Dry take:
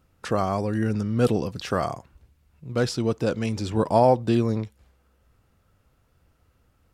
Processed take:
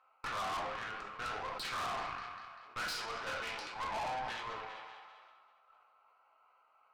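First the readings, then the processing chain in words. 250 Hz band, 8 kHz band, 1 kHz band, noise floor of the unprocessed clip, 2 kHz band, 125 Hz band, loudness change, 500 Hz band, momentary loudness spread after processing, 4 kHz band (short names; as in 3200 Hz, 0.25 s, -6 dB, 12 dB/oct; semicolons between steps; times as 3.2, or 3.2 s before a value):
-30.0 dB, -8.5 dB, -9.5 dB, -66 dBFS, -2.5 dB, -30.0 dB, -15.0 dB, -22.0 dB, 12 LU, -4.5 dB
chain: Wiener smoothing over 25 samples; reverse; compressor, threshold -28 dBFS, peak gain reduction 14 dB; reverse; LPF 2500 Hz 12 dB/oct; thin delay 0.196 s, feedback 56%, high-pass 1600 Hz, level -14.5 dB; limiter -26 dBFS, peak gain reduction 9 dB; HPF 1000 Hz 24 dB/oct; two-slope reverb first 0.48 s, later 1.9 s, from -20 dB, DRR -3.5 dB; tube stage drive 51 dB, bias 0.75; sustainer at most 25 dB/s; gain +15.5 dB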